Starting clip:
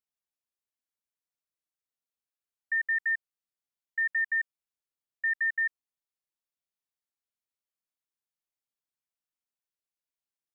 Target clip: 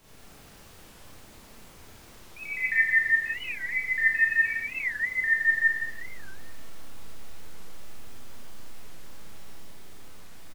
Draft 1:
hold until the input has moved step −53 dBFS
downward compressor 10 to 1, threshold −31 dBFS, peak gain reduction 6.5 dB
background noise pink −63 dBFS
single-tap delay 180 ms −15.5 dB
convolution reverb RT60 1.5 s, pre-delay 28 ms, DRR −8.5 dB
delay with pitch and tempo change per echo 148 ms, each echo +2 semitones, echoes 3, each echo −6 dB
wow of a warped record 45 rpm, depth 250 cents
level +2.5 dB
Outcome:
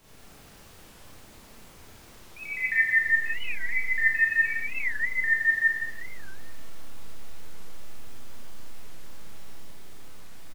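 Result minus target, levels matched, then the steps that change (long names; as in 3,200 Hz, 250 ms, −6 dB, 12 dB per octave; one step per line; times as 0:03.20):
hold until the input has moved: distortion +7 dB
change: hold until the input has moved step −62.5 dBFS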